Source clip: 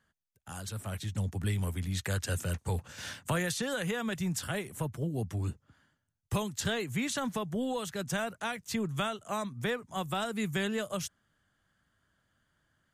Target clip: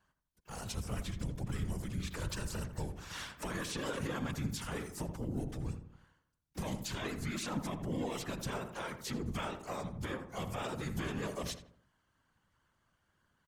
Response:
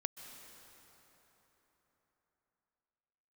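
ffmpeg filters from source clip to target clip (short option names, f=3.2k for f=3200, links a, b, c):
-filter_complex "[0:a]asplit=3[a][b][c];[b]asetrate=29433,aresample=44100,atempo=1.49831,volume=-3dB[d];[c]asetrate=88200,aresample=44100,atempo=0.5,volume=-16dB[e];[a][d][e]amix=inputs=3:normalize=0,alimiter=level_in=2.5dB:limit=-24dB:level=0:latency=1:release=67,volume=-2.5dB,afftfilt=real='hypot(re,im)*cos(2*PI*random(0))':imag='hypot(re,im)*sin(2*PI*random(1))':win_size=512:overlap=0.75,asplit=2[f][g];[g]adelay=79,lowpass=f=1.6k:p=1,volume=-8dB,asplit=2[h][i];[i]adelay=79,lowpass=f=1.6k:p=1,volume=0.44,asplit=2[j][k];[k]adelay=79,lowpass=f=1.6k:p=1,volume=0.44,asplit=2[l][m];[m]adelay=79,lowpass=f=1.6k:p=1,volume=0.44,asplit=2[n][o];[o]adelay=79,lowpass=f=1.6k:p=1,volume=0.44[p];[h][j][l][n][p]amix=inputs=5:normalize=0[q];[f][q]amix=inputs=2:normalize=0,asetrate=42336,aresample=44100,volume=2.5dB"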